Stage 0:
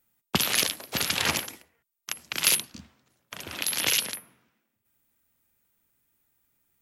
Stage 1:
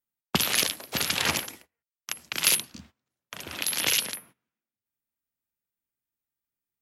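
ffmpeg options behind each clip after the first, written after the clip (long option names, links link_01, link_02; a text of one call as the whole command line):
ffmpeg -i in.wav -af "bandreject=frequency=50:width_type=h:width=6,bandreject=frequency=100:width_type=h:width=6,agate=range=-18dB:threshold=-51dB:ratio=16:detection=peak" out.wav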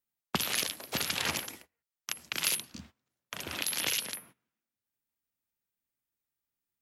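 ffmpeg -i in.wav -af "acompressor=threshold=-32dB:ratio=2" out.wav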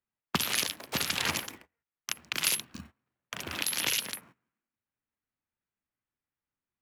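ffmpeg -i in.wav -filter_complex "[0:a]acrossover=split=510|2800[link_01][link_02][link_03];[link_01]acrusher=samples=32:mix=1:aa=0.000001[link_04];[link_03]aeval=exprs='sgn(val(0))*max(abs(val(0))-0.00376,0)':channel_layout=same[link_05];[link_04][link_02][link_05]amix=inputs=3:normalize=0,volume=2.5dB" out.wav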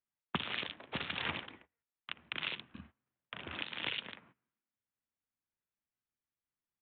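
ffmpeg -i in.wav -af "aresample=8000,aresample=44100,volume=-6dB" out.wav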